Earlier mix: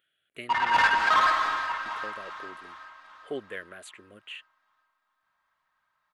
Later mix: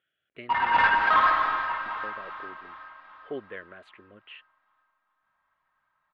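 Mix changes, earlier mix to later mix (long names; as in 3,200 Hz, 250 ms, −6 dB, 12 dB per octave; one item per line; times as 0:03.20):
background: send +7.0 dB
master: add high-frequency loss of the air 330 metres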